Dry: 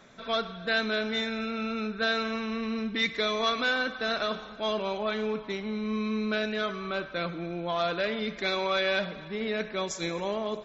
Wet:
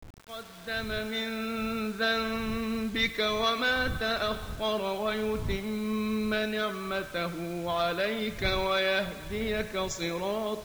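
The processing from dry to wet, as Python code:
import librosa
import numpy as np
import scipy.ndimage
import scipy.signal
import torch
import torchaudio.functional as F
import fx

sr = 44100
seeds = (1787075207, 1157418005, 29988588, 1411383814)

y = fx.fade_in_head(x, sr, length_s=1.57)
y = fx.dmg_wind(y, sr, seeds[0], corner_hz=93.0, level_db=-43.0)
y = fx.quant_dither(y, sr, seeds[1], bits=8, dither='none')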